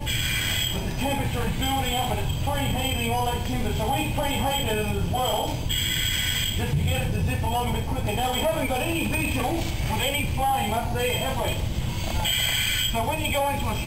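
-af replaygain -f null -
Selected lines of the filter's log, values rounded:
track_gain = +5.8 dB
track_peak = 0.158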